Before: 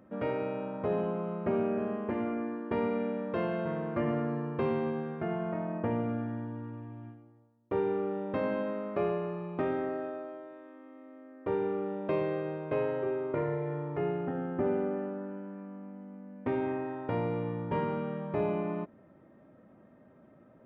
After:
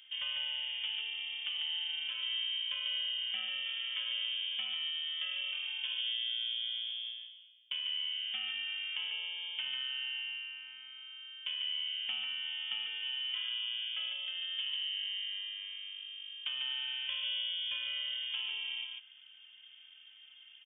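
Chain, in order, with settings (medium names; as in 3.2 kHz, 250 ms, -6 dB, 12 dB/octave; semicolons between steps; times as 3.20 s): compression, threshold -36 dBFS, peak gain reduction 10.5 dB; on a send: delay 146 ms -5 dB; on the sum: frequency inversion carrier 3.4 kHz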